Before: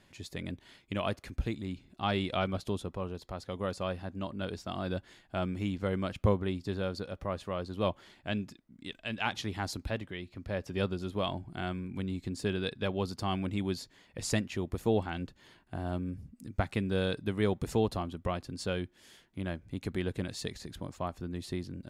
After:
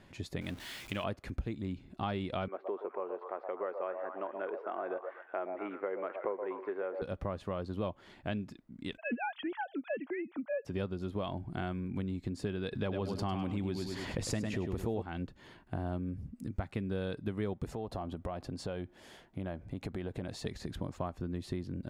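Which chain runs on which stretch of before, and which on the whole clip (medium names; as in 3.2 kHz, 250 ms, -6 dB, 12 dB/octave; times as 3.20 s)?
0.41–1.04 s: jump at every zero crossing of -46.5 dBFS + tilt shelf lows -7 dB, about 1.4 kHz
2.48–7.02 s: Chebyshev band-pass 370–2100 Hz, order 3 + repeats whose band climbs or falls 121 ms, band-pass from 670 Hz, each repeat 0.7 oct, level -5.5 dB
8.97–10.65 s: formants replaced by sine waves + loudspeaker Doppler distortion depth 0.14 ms
12.73–15.02 s: feedback delay 102 ms, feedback 28%, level -8 dB + level flattener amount 50%
17.70–20.46 s: peaking EQ 700 Hz +7 dB 0.94 oct + compression 3:1, threshold -41 dBFS
whole clip: treble shelf 2.6 kHz -10 dB; compression 4:1, threshold -40 dBFS; trim +6 dB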